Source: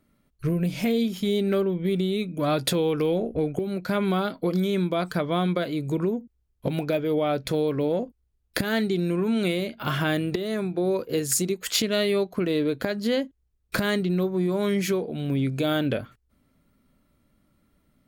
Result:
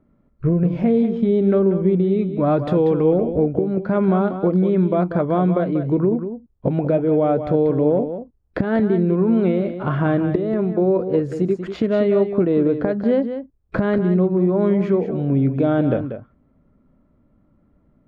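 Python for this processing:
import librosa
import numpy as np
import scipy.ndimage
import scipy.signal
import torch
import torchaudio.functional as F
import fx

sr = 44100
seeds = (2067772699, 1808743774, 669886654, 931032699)

y = scipy.signal.sosfilt(scipy.signal.butter(2, 1000.0, 'lowpass', fs=sr, output='sos'), x)
y = y + 10.0 ** (-9.5 / 20.0) * np.pad(y, (int(189 * sr / 1000.0), 0))[:len(y)]
y = y * 10.0 ** (7.0 / 20.0)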